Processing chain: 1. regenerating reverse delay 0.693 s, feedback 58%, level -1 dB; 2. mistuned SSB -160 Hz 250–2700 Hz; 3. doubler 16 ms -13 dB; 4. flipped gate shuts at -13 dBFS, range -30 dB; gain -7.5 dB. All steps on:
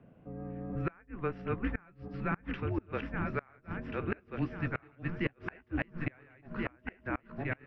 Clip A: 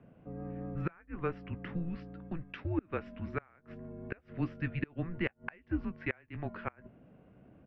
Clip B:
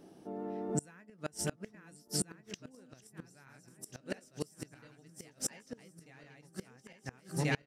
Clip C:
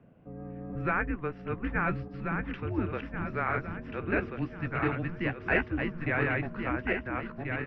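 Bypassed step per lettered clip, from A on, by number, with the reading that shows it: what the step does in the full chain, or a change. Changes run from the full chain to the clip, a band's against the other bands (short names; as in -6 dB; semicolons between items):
1, 1 kHz band -2.5 dB; 2, 4 kHz band +14.0 dB; 4, 2 kHz band +4.0 dB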